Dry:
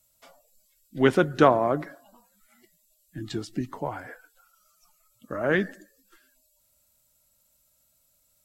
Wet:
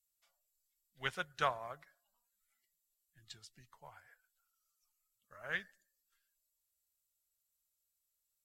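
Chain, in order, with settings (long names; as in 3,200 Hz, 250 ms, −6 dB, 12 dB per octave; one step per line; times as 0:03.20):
guitar amp tone stack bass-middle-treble 10-0-10
expander for the loud parts 1.5 to 1, over −54 dBFS
level −3 dB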